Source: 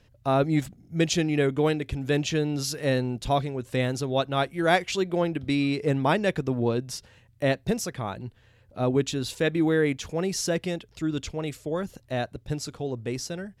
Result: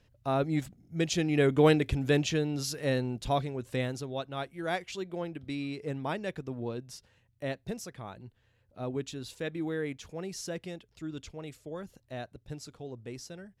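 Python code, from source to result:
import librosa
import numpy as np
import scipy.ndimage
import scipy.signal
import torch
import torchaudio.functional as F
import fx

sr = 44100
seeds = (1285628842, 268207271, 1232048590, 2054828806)

y = fx.gain(x, sr, db=fx.line((1.08, -6.0), (1.74, 3.0), (2.47, -4.5), (3.7, -4.5), (4.2, -11.0)))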